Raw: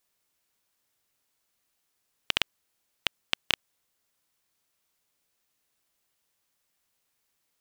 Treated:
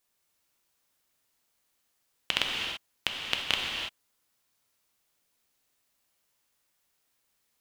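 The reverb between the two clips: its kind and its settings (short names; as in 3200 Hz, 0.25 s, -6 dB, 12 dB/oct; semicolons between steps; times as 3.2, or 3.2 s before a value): non-linear reverb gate 0.36 s flat, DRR -0.5 dB; gain -1.5 dB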